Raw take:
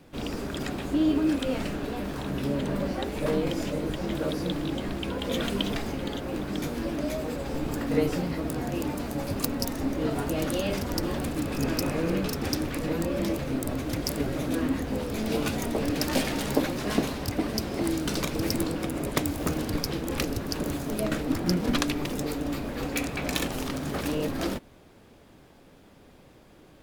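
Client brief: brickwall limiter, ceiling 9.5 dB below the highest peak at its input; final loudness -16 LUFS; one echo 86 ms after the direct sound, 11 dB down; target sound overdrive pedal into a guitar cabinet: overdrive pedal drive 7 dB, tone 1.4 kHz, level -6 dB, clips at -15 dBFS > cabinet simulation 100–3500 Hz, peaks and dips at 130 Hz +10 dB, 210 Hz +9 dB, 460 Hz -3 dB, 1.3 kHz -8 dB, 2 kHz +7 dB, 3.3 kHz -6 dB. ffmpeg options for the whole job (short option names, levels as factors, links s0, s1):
-filter_complex "[0:a]alimiter=limit=0.141:level=0:latency=1,aecho=1:1:86:0.282,asplit=2[s0][s1];[s1]highpass=f=720:p=1,volume=2.24,asoftclip=type=tanh:threshold=0.178[s2];[s0][s2]amix=inputs=2:normalize=0,lowpass=f=1400:p=1,volume=0.501,highpass=100,equalizer=f=130:t=q:w=4:g=10,equalizer=f=210:t=q:w=4:g=9,equalizer=f=460:t=q:w=4:g=-3,equalizer=f=1300:t=q:w=4:g=-8,equalizer=f=2000:t=q:w=4:g=7,equalizer=f=3300:t=q:w=4:g=-6,lowpass=f=3500:w=0.5412,lowpass=f=3500:w=1.3066,volume=5.01"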